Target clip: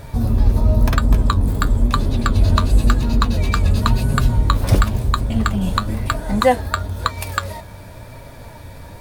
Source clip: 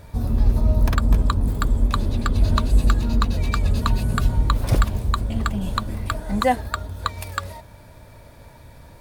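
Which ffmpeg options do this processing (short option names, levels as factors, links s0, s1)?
-filter_complex "[0:a]asplit=2[s0][s1];[s1]acompressor=threshold=0.0316:ratio=6,volume=0.75[s2];[s0][s2]amix=inputs=2:normalize=0,flanger=delay=7.3:depth=3.7:regen=63:speed=0.97:shape=sinusoidal,volume=2.37"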